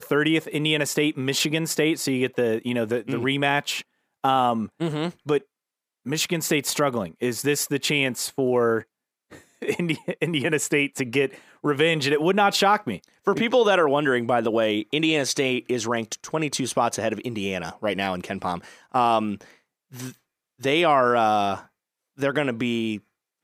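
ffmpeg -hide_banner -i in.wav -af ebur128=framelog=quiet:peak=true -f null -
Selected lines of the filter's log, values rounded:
Integrated loudness:
  I:         -23.4 LUFS
  Threshold: -33.8 LUFS
Loudness range:
  LRA:         4.7 LU
  Threshold: -43.9 LUFS
  LRA low:   -26.0 LUFS
  LRA high:  -21.3 LUFS
True peak:
  Peak:       -6.0 dBFS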